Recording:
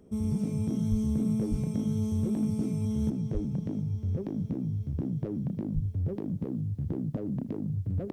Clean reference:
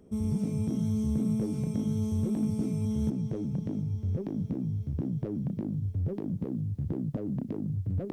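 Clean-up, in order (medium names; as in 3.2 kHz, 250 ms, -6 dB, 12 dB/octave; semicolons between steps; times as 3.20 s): de-plosive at 0.90/1.50/3.33/5.74 s; inverse comb 78 ms -19.5 dB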